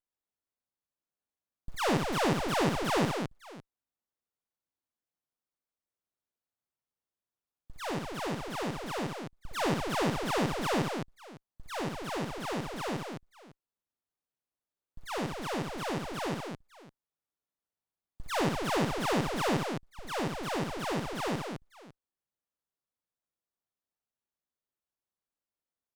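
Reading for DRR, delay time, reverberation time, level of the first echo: no reverb audible, 62 ms, no reverb audible, −5.5 dB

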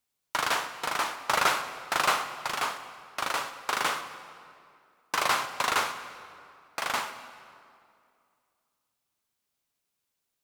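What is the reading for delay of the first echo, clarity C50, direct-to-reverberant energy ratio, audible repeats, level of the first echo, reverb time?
no echo audible, 10.5 dB, 9.0 dB, no echo audible, no echo audible, 2.4 s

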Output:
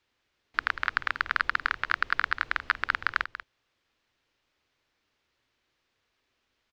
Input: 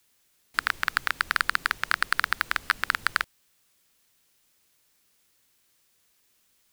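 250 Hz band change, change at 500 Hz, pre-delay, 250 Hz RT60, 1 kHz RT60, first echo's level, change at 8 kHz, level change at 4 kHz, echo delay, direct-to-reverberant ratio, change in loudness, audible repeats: −2.5 dB, −0.5 dB, no reverb audible, no reverb audible, no reverb audible, −12.5 dB, below −20 dB, −6.0 dB, 189 ms, no reverb audible, −2.0 dB, 1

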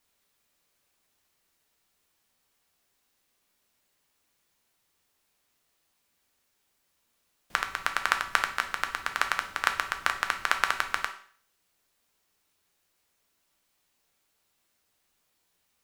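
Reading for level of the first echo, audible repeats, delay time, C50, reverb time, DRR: no echo audible, no echo audible, no echo audible, 10.5 dB, 0.50 s, 5.0 dB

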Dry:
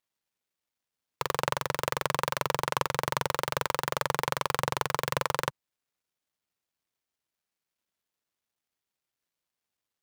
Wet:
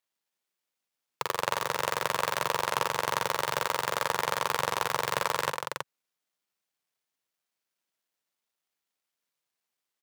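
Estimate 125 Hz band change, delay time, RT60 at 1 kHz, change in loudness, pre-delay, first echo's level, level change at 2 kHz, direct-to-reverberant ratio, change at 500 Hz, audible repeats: −6.0 dB, 55 ms, no reverb audible, +1.0 dB, no reverb audible, −9.5 dB, +1.5 dB, no reverb audible, 0.0 dB, 3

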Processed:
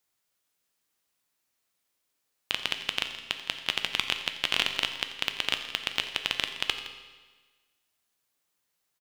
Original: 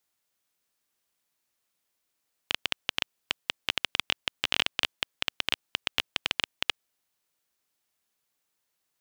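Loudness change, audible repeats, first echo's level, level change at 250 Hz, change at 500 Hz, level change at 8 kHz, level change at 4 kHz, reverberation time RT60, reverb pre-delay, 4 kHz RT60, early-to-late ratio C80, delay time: +1.0 dB, 2, −17.0 dB, +1.0 dB, +1.0 dB, +1.0 dB, +1.0 dB, 1.4 s, 7 ms, 1.3 s, 9.0 dB, 87 ms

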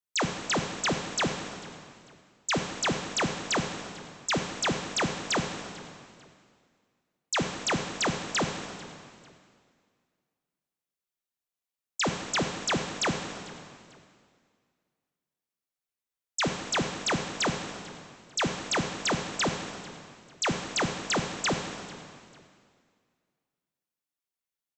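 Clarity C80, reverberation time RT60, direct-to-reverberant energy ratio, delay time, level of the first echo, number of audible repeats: 6.5 dB, 2.2 s, 4.0 dB, 445 ms, −21.5 dB, 2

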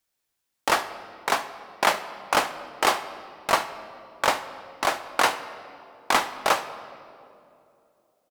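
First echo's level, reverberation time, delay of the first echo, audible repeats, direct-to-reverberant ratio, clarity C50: −18.5 dB, 2.7 s, 72 ms, 1, 10.5 dB, 12.0 dB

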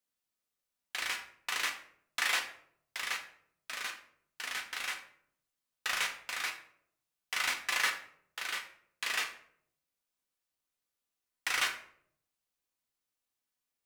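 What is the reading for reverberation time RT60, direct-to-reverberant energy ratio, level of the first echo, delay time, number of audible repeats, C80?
0.65 s, 2.0 dB, no echo audible, no echo audible, no echo audible, 13.0 dB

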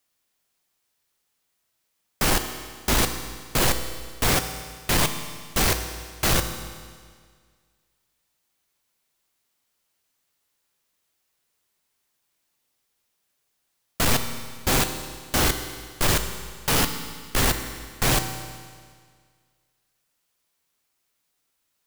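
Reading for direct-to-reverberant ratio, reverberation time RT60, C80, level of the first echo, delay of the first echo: 7.0 dB, 1.8 s, 10.0 dB, no echo audible, no echo audible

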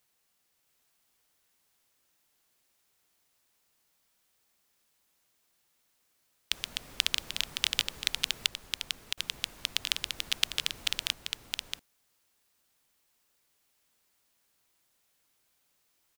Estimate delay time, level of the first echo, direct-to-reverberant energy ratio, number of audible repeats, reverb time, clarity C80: 666 ms, −3.5 dB, no reverb audible, 1, no reverb audible, no reverb audible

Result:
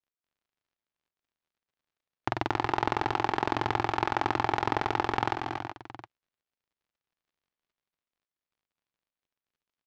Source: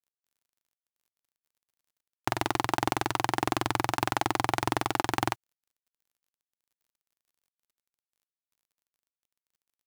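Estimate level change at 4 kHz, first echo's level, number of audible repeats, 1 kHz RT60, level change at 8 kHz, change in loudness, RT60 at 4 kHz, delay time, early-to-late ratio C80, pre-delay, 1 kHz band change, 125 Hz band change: −3.5 dB, −8.0 dB, 3, no reverb audible, below −10 dB, 0.0 dB, no reverb audible, 233 ms, no reverb audible, no reverb audible, +1.0 dB, −0.5 dB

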